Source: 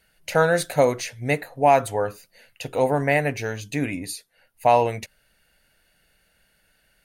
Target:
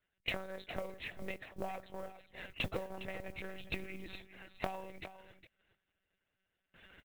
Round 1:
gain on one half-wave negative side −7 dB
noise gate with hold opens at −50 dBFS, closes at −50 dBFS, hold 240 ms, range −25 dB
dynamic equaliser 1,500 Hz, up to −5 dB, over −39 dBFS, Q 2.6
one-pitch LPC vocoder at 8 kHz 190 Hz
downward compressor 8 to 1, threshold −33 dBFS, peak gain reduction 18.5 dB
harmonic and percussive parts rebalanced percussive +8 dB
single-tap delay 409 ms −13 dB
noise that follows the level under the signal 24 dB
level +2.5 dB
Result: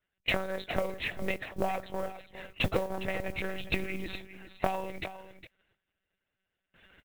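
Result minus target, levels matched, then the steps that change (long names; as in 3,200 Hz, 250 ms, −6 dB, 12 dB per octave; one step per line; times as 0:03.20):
downward compressor: peak gain reduction −10 dB
change: downward compressor 8 to 1, threshold −44.5 dBFS, peak gain reduction 28.5 dB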